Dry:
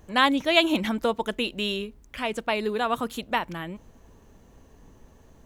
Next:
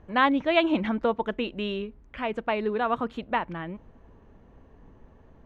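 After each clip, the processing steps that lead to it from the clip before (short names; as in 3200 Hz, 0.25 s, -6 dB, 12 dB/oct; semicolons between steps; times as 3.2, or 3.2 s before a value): LPF 2100 Hz 12 dB/oct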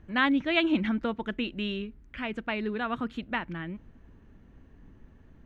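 band shelf 690 Hz -8.5 dB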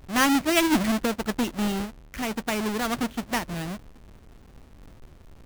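half-waves squared off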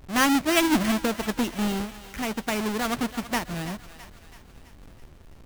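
thinning echo 0.33 s, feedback 57%, high-pass 650 Hz, level -13 dB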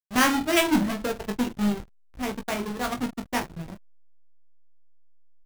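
reverb removal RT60 1.9 s; reverse bouncing-ball echo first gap 20 ms, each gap 1.2×, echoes 5; backlash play -26 dBFS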